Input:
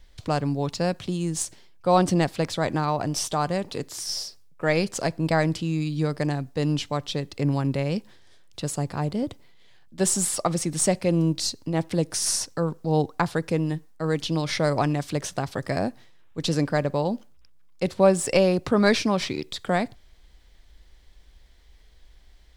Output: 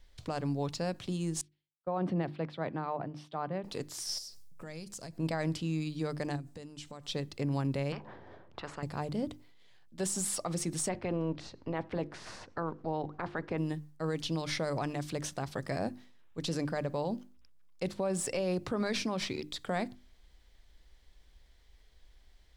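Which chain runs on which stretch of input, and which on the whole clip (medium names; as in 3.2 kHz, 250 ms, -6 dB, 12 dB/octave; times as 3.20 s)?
1.41–3.64 s: high-pass 120 Hz 24 dB/octave + distance through air 420 m + three bands expanded up and down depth 100%
4.18–5.18 s: tone controls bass +9 dB, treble +11 dB + compression 4:1, threshold -37 dBFS
6.36–7.08 s: peaking EQ 8.1 kHz +8.5 dB 0.64 oct + compression 12:1, threshold -34 dBFS
7.92–8.83 s: Chebyshev low-pass 890 Hz + spectrum-flattening compressor 4:1
10.88–13.57 s: spectral peaks clipped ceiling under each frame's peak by 14 dB + low-pass 2 kHz
whole clip: hum notches 50/100/150/200/250/300/350 Hz; peak limiter -17.5 dBFS; trim -6.5 dB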